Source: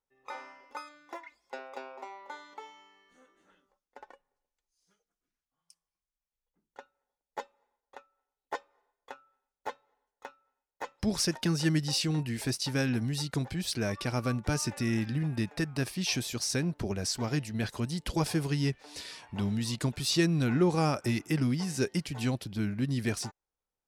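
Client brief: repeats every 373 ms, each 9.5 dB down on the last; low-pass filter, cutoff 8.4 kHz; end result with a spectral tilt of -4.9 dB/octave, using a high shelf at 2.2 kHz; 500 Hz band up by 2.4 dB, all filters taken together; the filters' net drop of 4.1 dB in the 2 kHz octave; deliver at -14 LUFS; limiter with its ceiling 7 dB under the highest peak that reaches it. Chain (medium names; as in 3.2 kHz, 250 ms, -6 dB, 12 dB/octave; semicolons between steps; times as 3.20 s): low-pass 8.4 kHz; peaking EQ 500 Hz +3.5 dB; peaking EQ 2 kHz -8 dB; treble shelf 2.2 kHz +4 dB; peak limiter -20.5 dBFS; feedback delay 373 ms, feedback 33%, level -9.5 dB; trim +17 dB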